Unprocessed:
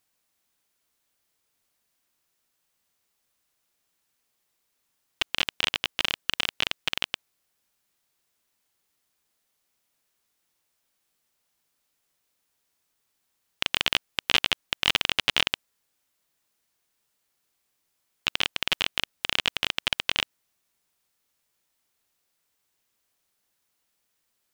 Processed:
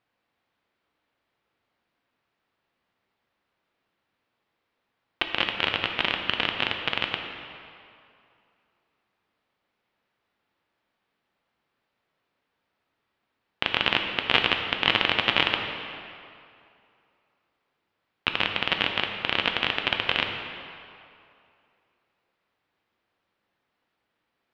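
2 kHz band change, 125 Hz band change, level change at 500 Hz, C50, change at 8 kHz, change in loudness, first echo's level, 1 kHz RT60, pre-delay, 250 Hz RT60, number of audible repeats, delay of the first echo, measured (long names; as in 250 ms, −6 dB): +3.5 dB, +5.5 dB, +7.0 dB, 5.0 dB, below −15 dB, +1.5 dB, no echo audible, 2.6 s, 4 ms, 2.4 s, no echo audible, no echo audible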